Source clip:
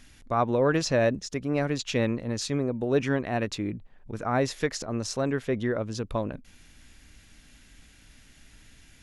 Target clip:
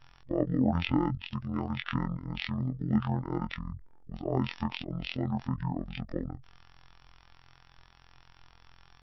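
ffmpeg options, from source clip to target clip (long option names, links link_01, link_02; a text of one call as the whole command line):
ffmpeg -i in.wav -af "afftfilt=real='hypot(re,im)*cos(PI*b)':imag='0':win_size=2048:overlap=0.75,asetrate=22050,aresample=44100,atempo=2" out.wav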